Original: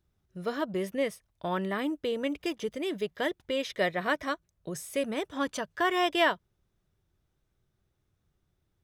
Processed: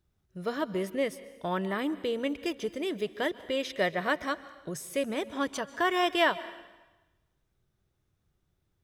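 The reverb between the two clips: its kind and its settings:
dense smooth reverb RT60 1.1 s, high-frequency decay 1×, pre-delay 120 ms, DRR 16 dB

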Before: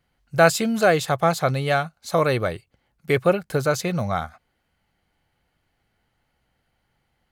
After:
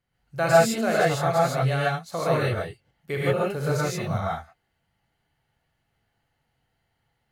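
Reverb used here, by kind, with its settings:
reverb whose tail is shaped and stops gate 180 ms rising, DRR −7 dB
level −10.5 dB

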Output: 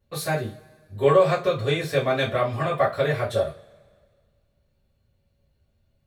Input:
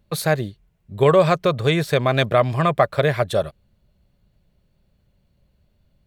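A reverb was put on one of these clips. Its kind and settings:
coupled-rooms reverb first 0.25 s, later 1.8 s, from −27 dB, DRR −9 dB
level −13.5 dB

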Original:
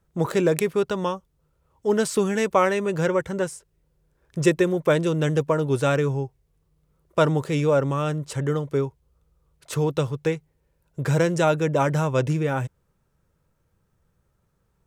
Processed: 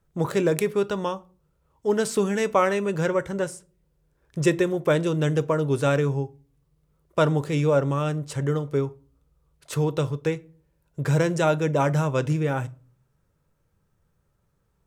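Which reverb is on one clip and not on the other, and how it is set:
rectangular room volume 240 cubic metres, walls furnished, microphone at 0.31 metres
level −1.5 dB

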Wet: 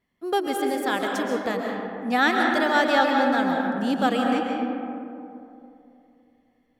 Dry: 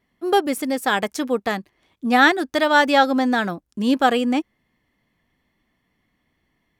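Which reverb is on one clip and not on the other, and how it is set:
comb and all-pass reverb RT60 2.8 s, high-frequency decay 0.35×, pre-delay 95 ms, DRR 0 dB
level −6.5 dB

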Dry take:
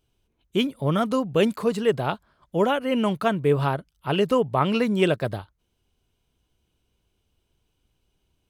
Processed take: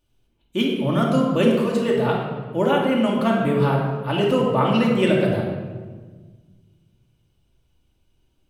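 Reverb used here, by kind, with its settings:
rectangular room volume 1,400 cubic metres, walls mixed, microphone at 2.5 metres
level −2 dB

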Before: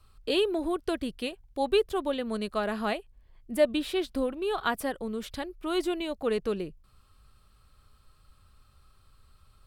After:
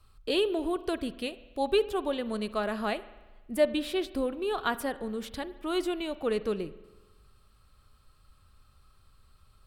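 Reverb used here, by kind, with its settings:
spring reverb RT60 1.2 s, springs 47 ms, chirp 30 ms, DRR 15 dB
level −1 dB

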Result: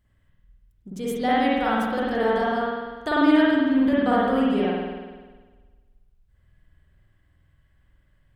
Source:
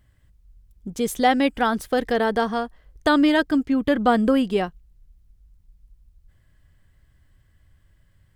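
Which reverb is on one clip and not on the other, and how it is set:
spring reverb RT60 1.4 s, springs 49 ms, chirp 55 ms, DRR −7.5 dB
level −9.5 dB

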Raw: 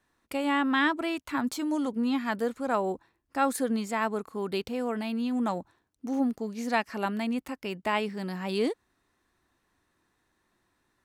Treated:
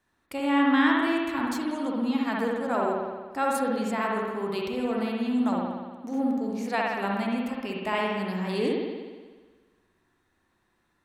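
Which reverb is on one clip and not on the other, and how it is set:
spring reverb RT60 1.4 s, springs 60 ms, chirp 25 ms, DRR −2 dB
level −2 dB

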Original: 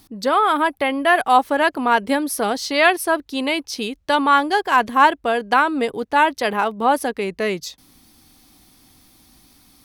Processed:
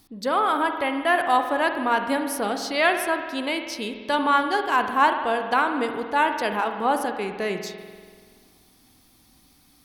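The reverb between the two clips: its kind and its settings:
spring reverb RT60 1.8 s, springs 48 ms, chirp 30 ms, DRR 6 dB
level −5.5 dB

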